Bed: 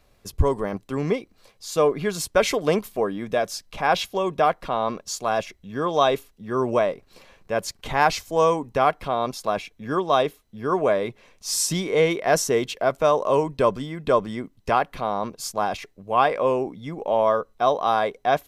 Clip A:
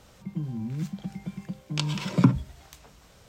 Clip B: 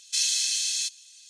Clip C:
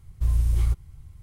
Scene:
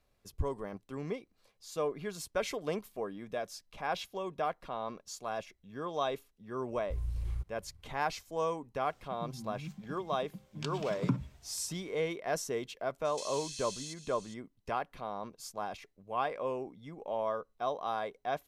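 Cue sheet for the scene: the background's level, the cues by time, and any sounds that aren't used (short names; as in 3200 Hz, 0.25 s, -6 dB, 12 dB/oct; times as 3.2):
bed -14 dB
6.69 add C -14 dB + high shelf 6100 Hz -8 dB
8.85 add A -12 dB
13.05 add B -4.5 dB + compressor, threshold -37 dBFS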